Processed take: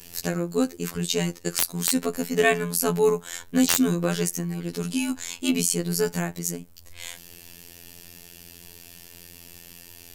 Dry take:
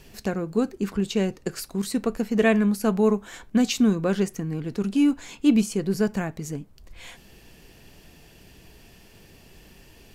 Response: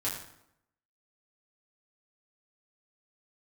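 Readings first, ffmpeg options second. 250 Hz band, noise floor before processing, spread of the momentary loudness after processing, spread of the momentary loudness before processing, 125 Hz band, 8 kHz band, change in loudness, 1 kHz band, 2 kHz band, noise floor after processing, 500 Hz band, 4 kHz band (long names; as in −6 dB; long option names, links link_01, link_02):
−4.0 dB, −52 dBFS, 22 LU, 10 LU, 0.0 dB, +10.5 dB, −0.5 dB, +1.5 dB, +3.0 dB, −48 dBFS, +0.5 dB, +5.0 dB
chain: -af "afftfilt=real='hypot(re,im)*cos(PI*b)':imag='0':win_size=2048:overlap=0.75,crystalizer=i=3.5:c=0,aeval=exprs='(mod(1.58*val(0)+1,2)-1)/1.58':channel_layout=same,volume=2.5dB"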